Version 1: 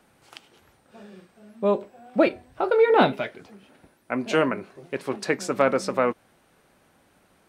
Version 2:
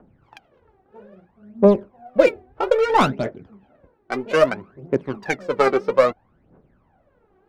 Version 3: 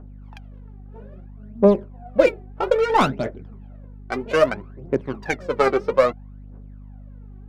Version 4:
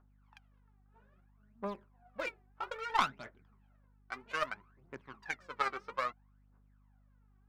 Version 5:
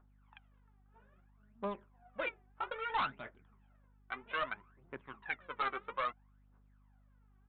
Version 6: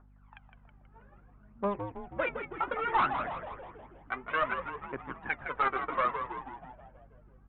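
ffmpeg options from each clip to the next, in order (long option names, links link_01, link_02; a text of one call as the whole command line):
ffmpeg -i in.wav -af "adynamicsmooth=sensitivity=1.5:basefreq=980,aphaser=in_gain=1:out_gain=1:delay=2.7:decay=0.75:speed=0.61:type=triangular,volume=1.5dB" out.wav
ffmpeg -i in.wav -af "aeval=exprs='val(0)+0.0126*(sin(2*PI*50*n/s)+sin(2*PI*2*50*n/s)/2+sin(2*PI*3*50*n/s)/3+sin(2*PI*4*50*n/s)/4+sin(2*PI*5*50*n/s)/5)':channel_layout=same,volume=-1dB" out.wav
ffmpeg -i in.wav -af "lowshelf=frequency=770:width_type=q:width=1.5:gain=-11.5,aeval=exprs='0.562*(cos(1*acos(clip(val(0)/0.562,-1,1)))-cos(1*PI/2))+0.1*(cos(3*acos(clip(val(0)/0.562,-1,1)))-cos(3*PI/2))':channel_layout=same,volume=-7.5dB" out.wav
ffmpeg -i in.wav -af "equalizer=frequency=120:width_type=o:width=2.5:gain=-2.5,aresample=8000,volume=30.5dB,asoftclip=hard,volume=-30.5dB,aresample=44100,volume=1.5dB" out.wav
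ffmpeg -i in.wav -filter_complex "[0:a]lowpass=2100,asplit=2[link_01][link_02];[link_02]asplit=8[link_03][link_04][link_05][link_06][link_07][link_08][link_09][link_10];[link_03]adelay=161,afreqshift=-90,volume=-7.5dB[link_11];[link_04]adelay=322,afreqshift=-180,volume=-12.1dB[link_12];[link_05]adelay=483,afreqshift=-270,volume=-16.7dB[link_13];[link_06]adelay=644,afreqshift=-360,volume=-21.2dB[link_14];[link_07]adelay=805,afreqshift=-450,volume=-25.8dB[link_15];[link_08]adelay=966,afreqshift=-540,volume=-30.4dB[link_16];[link_09]adelay=1127,afreqshift=-630,volume=-35dB[link_17];[link_10]adelay=1288,afreqshift=-720,volume=-39.6dB[link_18];[link_11][link_12][link_13][link_14][link_15][link_16][link_17][link_18]amix=inputs=8:normalize=0[link_19];[link_01][link_19]amix=inputs=2:normalize=0,volume=7.5dB" out.wav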